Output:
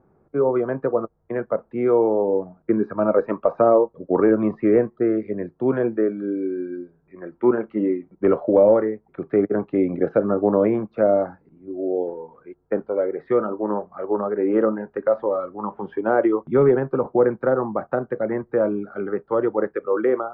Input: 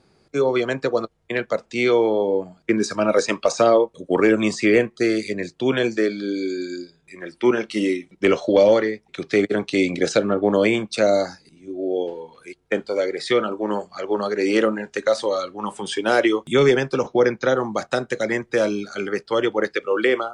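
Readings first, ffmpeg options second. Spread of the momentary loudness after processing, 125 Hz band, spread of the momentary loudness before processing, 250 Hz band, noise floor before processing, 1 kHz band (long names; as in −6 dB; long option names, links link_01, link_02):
10 LU, 0.0 dB, 10 LU, 0.0 dB, −62 dBFS, −1.0 dB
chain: -af "lowpass=frequency=1300:width=0.5412,lowpass=frequency=1300:width=1.3066"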